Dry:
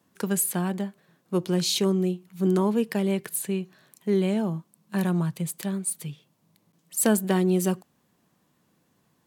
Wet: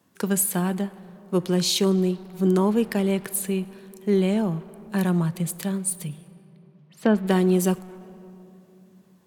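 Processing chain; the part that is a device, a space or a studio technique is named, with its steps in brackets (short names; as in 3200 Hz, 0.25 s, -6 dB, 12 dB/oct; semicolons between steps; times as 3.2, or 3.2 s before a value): 6.07–7.27 air absorption 300 m; saturated reverb return (on a send at -12 dB: reverb RT60 2.6 s, pre-delay 31 ms + soft clip -30 dBFS, distortion -6 dB); on the sum: gain +2.5 dB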